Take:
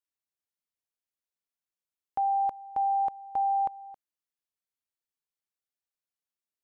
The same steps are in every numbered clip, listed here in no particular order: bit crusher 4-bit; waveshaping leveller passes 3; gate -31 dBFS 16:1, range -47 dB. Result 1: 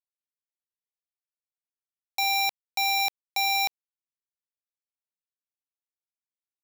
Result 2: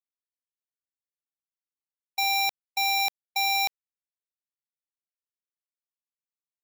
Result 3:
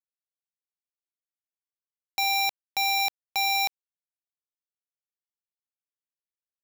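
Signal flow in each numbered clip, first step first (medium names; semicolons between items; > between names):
gate > waveshaping leveller > bit crusher; waveshaping leveller > bit crusher > gate; waveshaping leveller > gate > bit crusher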